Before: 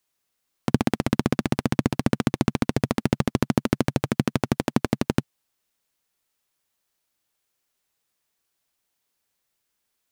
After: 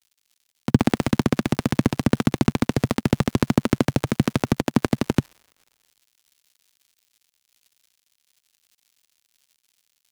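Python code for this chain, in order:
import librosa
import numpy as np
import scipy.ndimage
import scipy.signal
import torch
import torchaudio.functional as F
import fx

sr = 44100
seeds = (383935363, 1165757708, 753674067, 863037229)

y = fx.dmg_crackle(x, sr, seeds[0], per_s=180.0, level_db=-35.0)
y = fx.band_widen(y, sr, depth_pct=70)
y = y * librosa.db_to_amplitude(2.0)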